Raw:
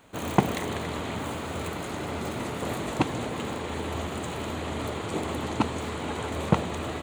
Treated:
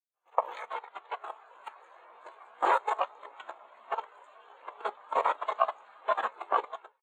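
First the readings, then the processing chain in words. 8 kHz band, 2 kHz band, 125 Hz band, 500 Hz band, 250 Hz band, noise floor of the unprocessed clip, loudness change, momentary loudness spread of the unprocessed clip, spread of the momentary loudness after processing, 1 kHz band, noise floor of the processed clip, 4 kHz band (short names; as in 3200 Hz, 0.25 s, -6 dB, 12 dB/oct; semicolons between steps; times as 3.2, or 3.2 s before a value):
under -20 dB, -4.5 dB, under -40 dB, -4.5 dB, -25.0 dB, -35 dBFS, -2.0 dB, 6 LU, 20 LU, +2.5 dB, -73 dBFS, -12.5 dB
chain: inverse Chebyshev high-pass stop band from 200 Hz, stop band 60 dB; doubler 16 ms -6 dB; level quantiser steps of 12 dB; ring modulator 210 Hz; AGC gain up to 14.5 dB; spectral expander 2.5:1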